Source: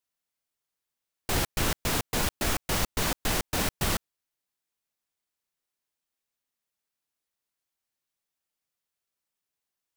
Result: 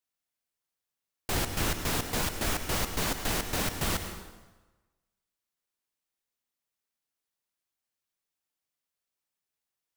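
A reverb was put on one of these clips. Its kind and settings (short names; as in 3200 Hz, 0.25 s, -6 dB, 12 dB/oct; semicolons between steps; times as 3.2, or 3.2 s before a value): plate-style reverb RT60 1.2 s, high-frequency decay 0.8×, pre-delay 85 ms, DRR 7.5 dB; gain -2.5 dB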